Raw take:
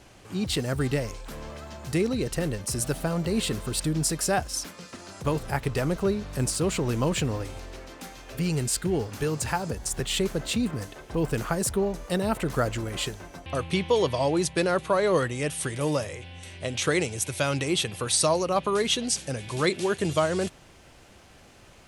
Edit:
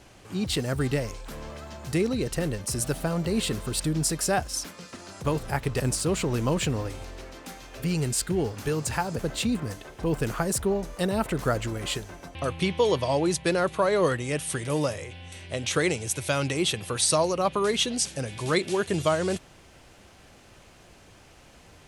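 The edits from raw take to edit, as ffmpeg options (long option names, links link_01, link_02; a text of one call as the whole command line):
ffmpeg -i in.wav -filter_complex "[0:a]asplit=3[link_01][link_02][link_03];[link_01]atrim=end=5.802[link_04];[link_02]atrim=start=6.348:end=9.742[link_05];[link_03]atrim=start=10.298[link_06];[link_04][link_05]acrossfade=duration=0.004:curve1=hsin:curve2=hsin[link_07];[link_07][link_06]acrossfade=duration=0.004:curve1=hsin:curve2=hsin" out.wav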